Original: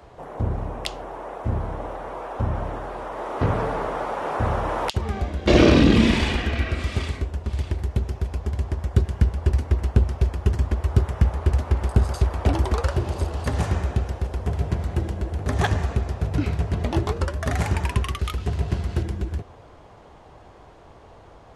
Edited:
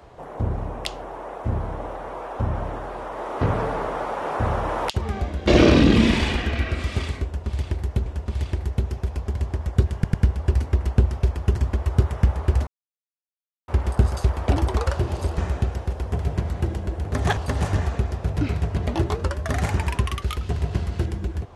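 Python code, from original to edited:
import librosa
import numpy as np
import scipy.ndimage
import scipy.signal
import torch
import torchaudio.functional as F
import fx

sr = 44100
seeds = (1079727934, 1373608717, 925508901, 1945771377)

y = fx.edit(x, sr, fx.repeat(start_s=7.24, length_s=0.82, count=2),
    fx.stutter(start_s=9.12, slice_s=0.1, count=3),
    fx.insert_silence(at_s=11.65, length_s=1.01),
    fx.move(start_s=13.35, length_s=0.37, to_s=15.71), tone=tone)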